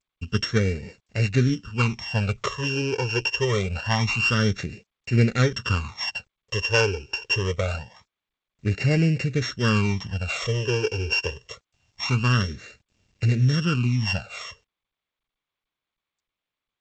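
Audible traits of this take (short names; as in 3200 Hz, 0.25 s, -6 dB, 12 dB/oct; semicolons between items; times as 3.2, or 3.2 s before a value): a buzz of ramps at a fixed pitch in blocks of 16 samples; phasing stages 12, 0.25 Hz, lowest notch 200–1100 Hz; a quantiser's noise floor 12-bit, dither none; G.722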